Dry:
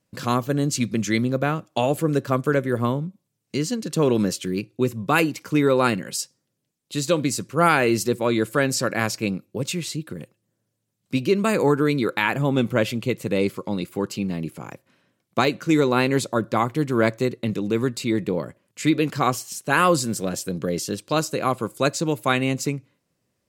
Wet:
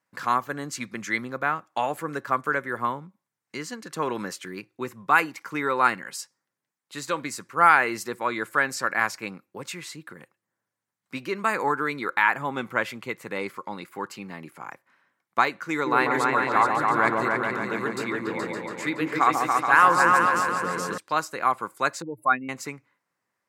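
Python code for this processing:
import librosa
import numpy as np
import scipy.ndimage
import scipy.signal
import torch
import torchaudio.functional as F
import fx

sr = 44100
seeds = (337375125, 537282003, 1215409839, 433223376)

y = fx.echo_opening(x, sr, ms=141, hz=750, octaves=2, feedback_pct=70, wet_db=0, at=(15.72, 20.98))
y = fx.spec_expand(y, sr, power=2.7, at=(22.02, 22.49))
y = fx.highpass(y, sr, hz=340.0, slope=6)
y = fx.band_shelf(y, sr, hz=1300.0, db=11.5, octaves=1.7)
y = F.gain(torch.from_numpy(y), -8.0).numpy()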